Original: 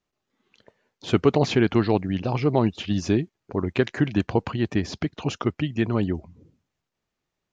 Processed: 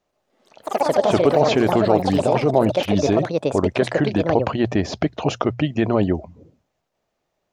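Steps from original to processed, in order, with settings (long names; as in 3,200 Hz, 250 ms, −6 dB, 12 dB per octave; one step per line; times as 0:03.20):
delay with pitch and tempo change per echo 90 ms, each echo +6 semitones, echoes 3, each echo −6 dB
parametric band 630 Hz +11.5 dB 1 octave
mains-hum notches 60/120 Hz
in parallel at −2 dB: compressor whose output falls as the input rises −20 dBFS, ratio −0.5
on the sum: level −3 dB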